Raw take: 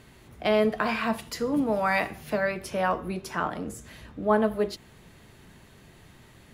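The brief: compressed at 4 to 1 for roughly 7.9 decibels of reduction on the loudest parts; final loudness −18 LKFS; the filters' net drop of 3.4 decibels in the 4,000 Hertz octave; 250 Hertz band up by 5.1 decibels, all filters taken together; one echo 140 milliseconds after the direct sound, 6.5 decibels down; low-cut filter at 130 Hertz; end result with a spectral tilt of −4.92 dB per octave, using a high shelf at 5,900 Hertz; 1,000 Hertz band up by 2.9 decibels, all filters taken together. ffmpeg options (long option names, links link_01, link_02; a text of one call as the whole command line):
ffmpeg -i in.wav -af "highpass=130,equalizer=frequency=250:width_type=o:gain=6.5,equalizer=frequency=1000:width_type=o:gain=3.5,equalizer=frequency=4000:width_type=o:gain=-7,highshelf=frequency=5900:gain=5.5,acompressor=threshold=-25dB:ratio=4,aecho=1:1:140:0.473,volume=11.5dB" out.wav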